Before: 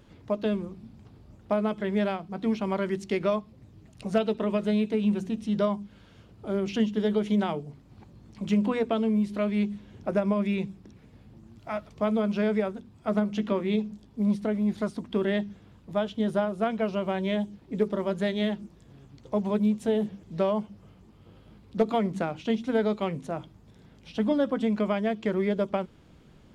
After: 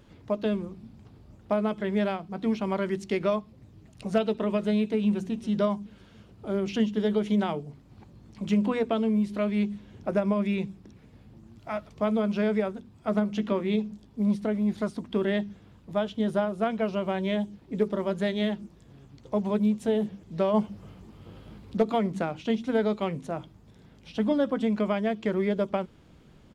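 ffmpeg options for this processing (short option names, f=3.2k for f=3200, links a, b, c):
-filter_complex "[0:a]asplit=2[a][b];[b]afade=t=in:st=5.03:d=0.01,afade=t=out:st=5.47:d=0.01,aecho=0:1:280|560|840|1120:0.141254|0.0706269|0.0353134|0.0176567[c];[a][c]amix=inputs=2:normalize=0,asplit=3[d][e][f];[d]afade=t=out:st=20.53:d=0.02[g];[e]acontrast=54,afade=t=in:st=20.53:d=0.02,afade=t=out:st=21.76:d=0.02[h];[f]afade=t=in:st=21.76:d=0.02[i];[g][h][i]amix=inputs=3:normalize=0"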